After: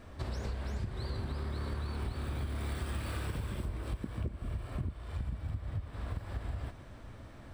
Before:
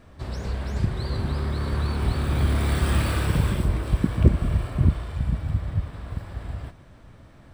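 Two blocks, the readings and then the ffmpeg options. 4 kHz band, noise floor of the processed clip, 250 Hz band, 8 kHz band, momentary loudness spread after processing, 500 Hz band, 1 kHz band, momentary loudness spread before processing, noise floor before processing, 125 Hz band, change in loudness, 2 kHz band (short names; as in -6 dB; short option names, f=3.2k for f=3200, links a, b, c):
-12.0 dB, -50 dBFS, -14.5 dB, -12.5 dB, 4 LU, -12.0 dB, -11.5 dB, 13 LU, -49 dBFS, -13.5 dB, -13.5 dB, -12.0 dB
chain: -af "equalizer=f=160:t=o:w=0.29:g=-8,acompressor=threshold=-33dB:ratio=12"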